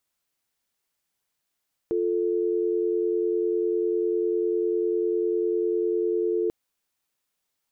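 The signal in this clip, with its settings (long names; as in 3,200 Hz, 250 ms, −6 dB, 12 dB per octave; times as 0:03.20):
call progress tone dial tone, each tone −24.5 dBFS 4.59 s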